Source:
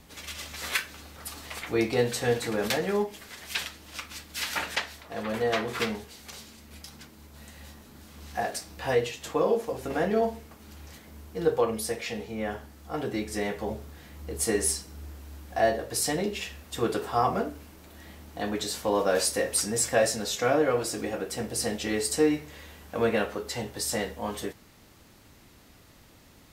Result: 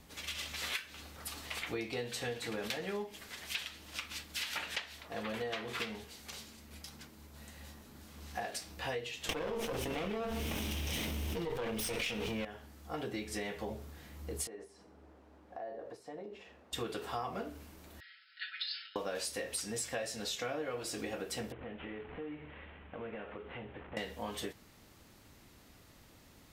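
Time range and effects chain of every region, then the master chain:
9.29–12.45 minimum comb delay 0.34 ms + fast leveller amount 100%
14.47–16.73 compressor, threshold -35 dBFS + band-pass 580 Hz, Q 0.84
18–18.96 comb 5.3 ms, depth 55% + compressor, threshold -25 dBFS + brick-wall FIR band-pass 1300–5300 Hz
21.52–23.97 CVSD 16 kbps + compressor 4:1, threshold -38 dBFS
whole clip: dynamic EQ 3000 Hz, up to +7 dB, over -48 dBFS, Q 1.1; compressor 6:1, threshold -31 dBFS; gain -4.5 dB

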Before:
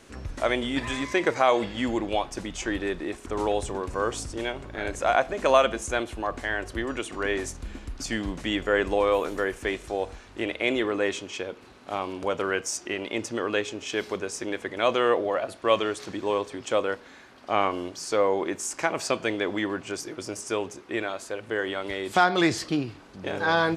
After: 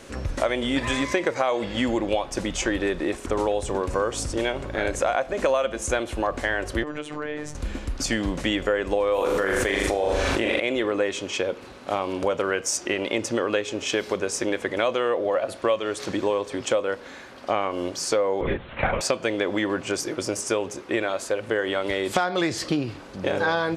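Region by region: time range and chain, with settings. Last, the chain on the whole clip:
6.83–7.55 LPF 2200 Hz 6 dB/oct + robotiser 150 Hz + compressor 4:1, threshold -33 dBFS
9.14–10.6 notches 50/100/150/200/250/300/350/400/450/500 Hz + flutter echo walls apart 6.9 m, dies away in 0.51 s + fast leveller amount 100%
18.41–19.01 doubler 37 ms -4 dB + LPC vocoder at 8 kHz whisper
whole clip: bell 540 Hz +7 dB 0.22 oct; compressor 6:1, threshold -27 dBFS; gain +7 dB

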